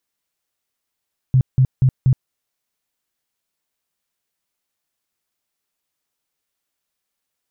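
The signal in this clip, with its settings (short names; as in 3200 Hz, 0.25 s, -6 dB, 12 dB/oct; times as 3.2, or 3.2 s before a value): tone bursts 130 Hz, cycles 9, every 0.24 s, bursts 4, -9.5 dBFS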